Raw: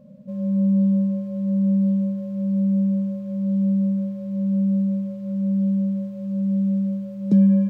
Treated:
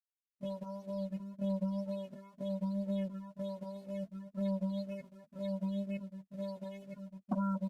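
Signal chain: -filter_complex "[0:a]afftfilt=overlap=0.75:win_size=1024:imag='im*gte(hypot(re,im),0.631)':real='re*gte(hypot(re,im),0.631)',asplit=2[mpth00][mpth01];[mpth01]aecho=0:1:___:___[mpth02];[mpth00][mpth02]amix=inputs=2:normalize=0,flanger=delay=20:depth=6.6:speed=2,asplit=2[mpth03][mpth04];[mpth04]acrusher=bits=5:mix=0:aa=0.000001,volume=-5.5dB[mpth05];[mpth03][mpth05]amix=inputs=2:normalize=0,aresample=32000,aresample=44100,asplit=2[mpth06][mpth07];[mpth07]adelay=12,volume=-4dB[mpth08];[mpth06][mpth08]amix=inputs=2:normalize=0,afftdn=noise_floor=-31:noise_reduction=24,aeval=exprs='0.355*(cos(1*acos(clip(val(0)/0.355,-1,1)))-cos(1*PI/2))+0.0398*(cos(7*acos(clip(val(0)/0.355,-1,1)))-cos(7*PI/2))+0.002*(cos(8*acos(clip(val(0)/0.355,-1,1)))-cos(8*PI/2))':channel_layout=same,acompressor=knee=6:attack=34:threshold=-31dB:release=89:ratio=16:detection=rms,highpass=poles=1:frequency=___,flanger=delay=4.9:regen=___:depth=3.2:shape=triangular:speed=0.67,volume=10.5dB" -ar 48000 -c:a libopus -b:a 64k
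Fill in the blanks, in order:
233, 0.282, 770, -11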